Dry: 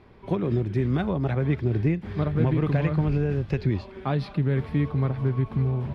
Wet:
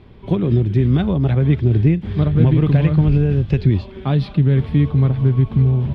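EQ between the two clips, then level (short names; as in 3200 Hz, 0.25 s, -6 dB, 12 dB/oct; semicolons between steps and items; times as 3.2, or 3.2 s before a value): low shelf 360 Hz +11.5 dB; bell 3300 Hz +9.5 dB 0.78 oct; 0.0 dB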